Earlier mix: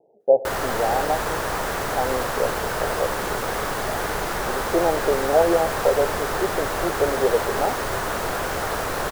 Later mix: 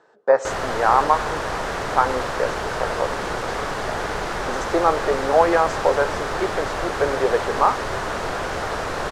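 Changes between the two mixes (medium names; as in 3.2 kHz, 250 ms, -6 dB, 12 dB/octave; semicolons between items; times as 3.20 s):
speech: remove steep low-pass 790 Hz 72 dB/octave; master: add low-pass 6.4 kHz 12 dB/octave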